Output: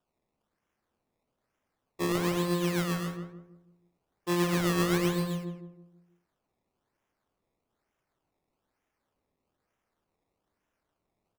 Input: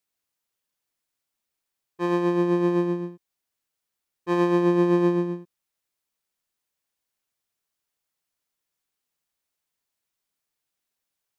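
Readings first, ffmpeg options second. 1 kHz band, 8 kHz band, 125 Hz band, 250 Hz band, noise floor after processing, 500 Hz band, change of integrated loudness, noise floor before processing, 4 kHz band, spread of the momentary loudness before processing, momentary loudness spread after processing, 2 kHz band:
−5.0 dB, can't be measured, −1.5 dB, −7.0 dB, −84 dBFS, −8.5 dB, −6.0 dB, −84 dBFS, +7.5 dB, 12 LU, 15 LU, +1.0 dB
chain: -filter_complex "[0:a]acrossover=split=290|1300[link_01][link_02][link_03];[link_02]acompressor=threshold=-35dB:ratio=6[link_04];[link_01][link_04][link_03]amix=inputs=3:normalize=0,acrusher=samples=20:mix=1:aa=0.000001:lfo=1:lforange=20:lforate=1.1,asplit=2[link_05][link_06];[link_06]adelay=162,lowpass=frequency=950:poles=1,volume=-3dB,asplit=2[link_07][link_08];[link_08]adelay=162,lowpass=frequency=950:poles=1,volume=0.4,asplit=2[link_09][link_10];[link_10]adelay=162,lowpass=frequency=950:poles=1,volume=0.4,asplit=2[link_11][link_12];[link_12]adelay=162,lowpass=frequency=950:poles=1,volume=0.4,asplit=2[link_13][link_14];[link_14]adelay=162,lowpass=frequency=950:poles=1,volume=0.4[link_15];[link_05][link_07][link_09][link_11][link_13][link_15]amix=inputs=6:normalize=0"

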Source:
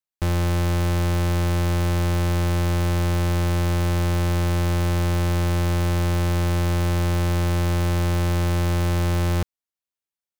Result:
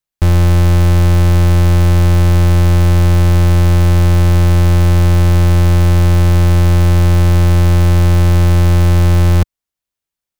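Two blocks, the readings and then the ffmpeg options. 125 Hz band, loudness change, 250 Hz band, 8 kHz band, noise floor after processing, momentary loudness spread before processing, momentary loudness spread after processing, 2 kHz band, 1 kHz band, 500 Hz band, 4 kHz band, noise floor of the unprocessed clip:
+12.5 dB, +11.5 dB, +9.0 dB, +6.5 dB, −85 dBFS, 0 LU, 0 LU, +6.5 dB, +6.5 dB, +7.0 dB, +6.5 dB, below −85 dBFS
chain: -af "lowshelf=frequency=120:gain=9.5,volume=6.5dB"

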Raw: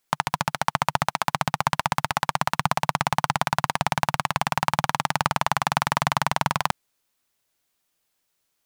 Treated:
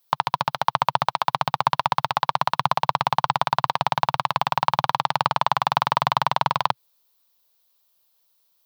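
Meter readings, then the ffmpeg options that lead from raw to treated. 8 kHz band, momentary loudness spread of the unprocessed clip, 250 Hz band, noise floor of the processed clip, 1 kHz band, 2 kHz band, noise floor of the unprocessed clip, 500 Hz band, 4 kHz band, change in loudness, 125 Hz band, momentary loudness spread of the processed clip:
−10.0 dB, 2 LU, −5.0 dB, −71 dBFS, +3.5 dB, −2.5 dB, −75 dBFS, +1.5 dB, +1.5 dB, +2.0 dB, −2.5 dB, 2 LU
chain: -filter_complex "[0:a]crystalizer=i=9:c=0,acrossover=split=4300[link_01][link_02];[link_02]acompressor=threshold=-22dB:ratio=4:attack=1:release=60[link_03];[link_01][link_03]amix=inputs=2:normalize=0,equalizer=frequency=125:width_type=o:width=1:gain=11,equalizer=frequency=500:width_type=o:width=1:gain=11,equalizer=frequency=1000:width_type=o:width=1:gain=11,equalizer=frequency=2000:width_type=o:width=1:gain=-4,equalizer=frequency=4000:width_type=o:width=1:gain=7,equalizer=frequency=8000:width_type=o:width=1:gain=-10,volume=-12.5dB"

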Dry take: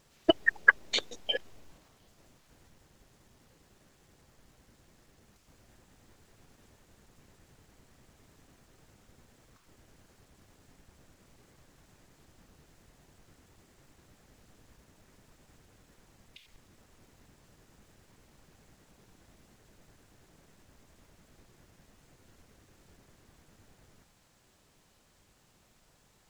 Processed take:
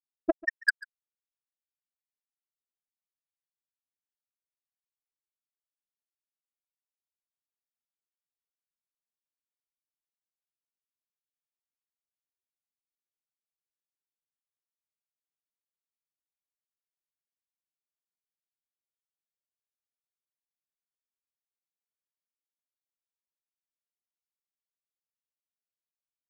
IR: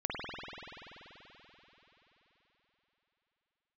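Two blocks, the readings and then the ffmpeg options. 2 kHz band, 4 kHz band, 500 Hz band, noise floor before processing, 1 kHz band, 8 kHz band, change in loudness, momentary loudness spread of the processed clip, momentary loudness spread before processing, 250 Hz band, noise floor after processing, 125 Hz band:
−5.0 dB, −14.0 dB, −4.5 dB, −66 dBFS, −7.5 dB, −7.5 dB, −2.5 dB, 10 LU, 11 LU, −2.5 dB, below −85 dBFS, below −20 dB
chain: -af "afftfilt=real='re*gte(hypot(re,im),0.708)':imag='im*gte(hypot(re,im),0.708)':win_size=1024:overlap=0.75,asoftclip=type=tanh:threshold=-16.5dB,aecho=1:1:141:0.0794,volume=2dB"

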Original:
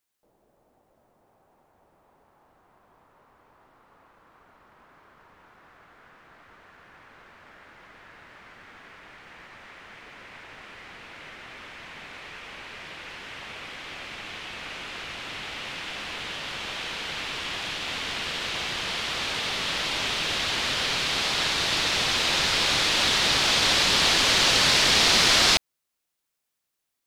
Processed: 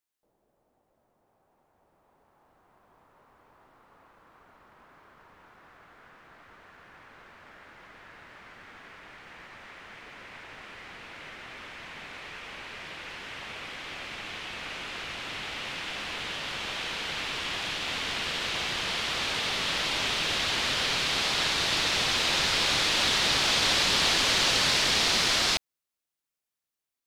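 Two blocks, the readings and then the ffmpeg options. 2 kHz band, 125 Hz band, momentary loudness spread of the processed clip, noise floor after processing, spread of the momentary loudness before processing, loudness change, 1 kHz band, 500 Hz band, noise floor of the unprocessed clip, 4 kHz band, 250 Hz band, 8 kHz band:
−2.5 dB, −2.5 dB, 20 LU, below −85 dBFS, 22 LU, −3.5 dB, −2.5 dB, −3.0 dB, −81 dBFS, −3.0 dB, −3.0 dB, −3.5 dB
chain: -af "dynaudnorm=framelen=230:gausssize=21:maxgain=7dB,volume=-7.5dB"

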